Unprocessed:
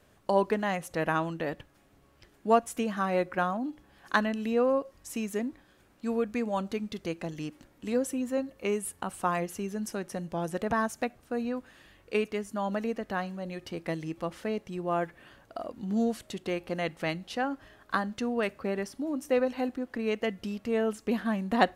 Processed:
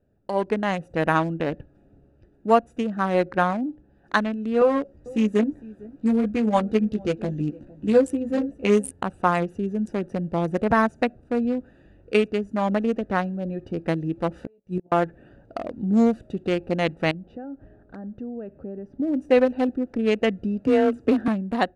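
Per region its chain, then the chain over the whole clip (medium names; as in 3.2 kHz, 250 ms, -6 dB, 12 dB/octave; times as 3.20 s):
4.60–8.91 s: doubling 14 ms -2.5 dB + delay 457 ms -20 dB
14.34–14.92 s: inverted gate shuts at -27 dBFS, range -36 dB + treble shelf 2 kHz +6 dB + doubling 16 ms -4 dB
17.11–19.00 s: low-pass 1.1 kHz 6 dB/octave + compression 2:1, threshold -48 dBFS
20.64–21.28 s: frequency shift +25 Hz + three bands compressed up and down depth 70%
whole clip: local Wiener filter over 41 samples; steep low-pass 11 kHz 48 dB/octave; level rider gain up to 13 dB; trim -3 dB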